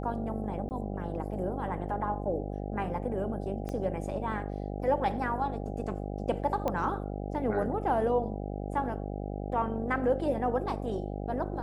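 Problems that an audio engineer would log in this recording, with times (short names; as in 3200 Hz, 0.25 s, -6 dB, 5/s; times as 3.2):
buzz 50 Hz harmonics 16 -36 dBFS
0.69–0.71 gap 19 ms
3.69 pop -24 dBFS
6.68 pop -18 dBFS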